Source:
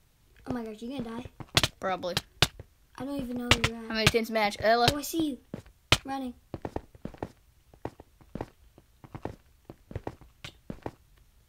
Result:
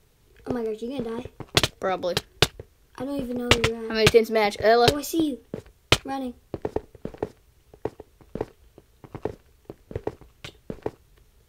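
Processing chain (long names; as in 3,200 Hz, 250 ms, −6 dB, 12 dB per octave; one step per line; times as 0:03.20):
parametric band 430 Hz +10.5 dB 0.46 octaves
level +3 dB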